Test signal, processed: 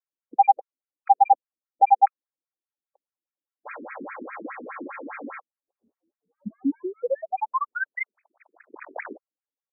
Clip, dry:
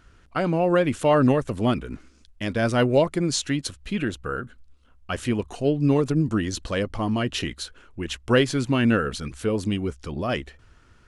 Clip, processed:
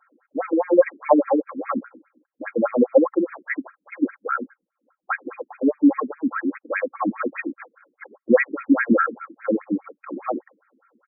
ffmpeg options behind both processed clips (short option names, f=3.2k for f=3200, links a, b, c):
-af "aemphasis=mode=production:type=50fm,aecho=1:1:3.7:0.79,adynamicsmooth=sensitivity=5:basefreq=1.2k,afftfilt=real='re*between(b*sr/1024,290*pow(1800/290,0.5+0.5*sin(2*PI*4.9*pts/sr))/1.41,290*pow(1800/290,0.5+0.5*sin(2*PI*4.9*pts/sr))*1.41)':imag='im*between(b*sr/1024,290*pow(1800/290,0.5+0.5*sin(2*PI*4.9*pts/sr))/1.41,290*pow(1800/290,0.5+0.5*sin(2*PI*4.9*pts/sr))*1.41)':win_size=1024:overlap=0.75,volume=6dB"